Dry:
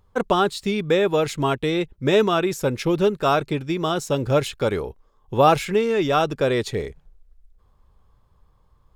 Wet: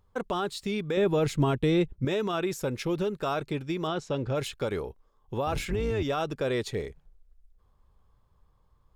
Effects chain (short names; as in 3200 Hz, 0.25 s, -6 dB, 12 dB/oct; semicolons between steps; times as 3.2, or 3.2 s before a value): 5.46–6.03 octaver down 2 oct, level +3 dB; limiter -14.5 dBFS, peak gain reduction 10.5 dB; 0.97–2.05 low shelf 350 Hz +10 dB; 3.87–4.35 LPF 4400 Hz 12 dB/oct; gain -6 dB